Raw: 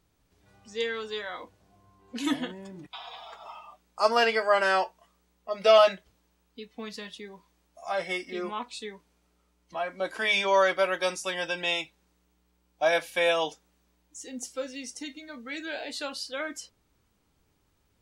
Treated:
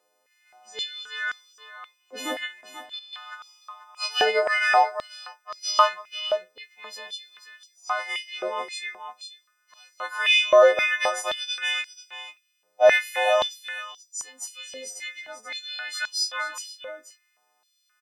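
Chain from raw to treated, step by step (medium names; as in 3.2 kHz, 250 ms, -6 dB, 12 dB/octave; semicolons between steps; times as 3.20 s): partials quantised in pitch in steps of 3 st; treble shelf 2.7 kHz -8.5 dB; 2.61–3.13 s: level held to a coarse grid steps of 10 dB; delay 487 ms -11 dB; step-sequenced high-pass 3.8 Hz 540–5400 Hz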